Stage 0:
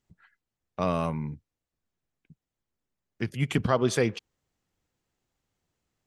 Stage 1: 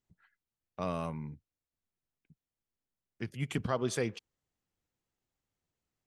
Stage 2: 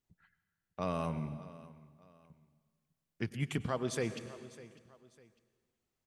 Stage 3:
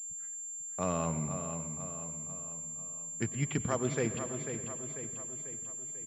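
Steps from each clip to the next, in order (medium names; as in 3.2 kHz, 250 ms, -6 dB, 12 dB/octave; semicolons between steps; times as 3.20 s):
dynamic bell 8.8 kHz, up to +4 dB, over -49 dBFS, Q 0.99; trim -8 dB
feedback delay 601 ms, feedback 34%, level -21.5 dB; plate-style reverb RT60 1.6 s, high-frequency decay 0.9×, pre-delay 85 ms, DRR 13 dB; gain riding 0.5 s
feedback delay 493 ms, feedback 54%, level -8.5 dB; class-D stage that switches slowly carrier 7.3 kHz; trim +2.5 dB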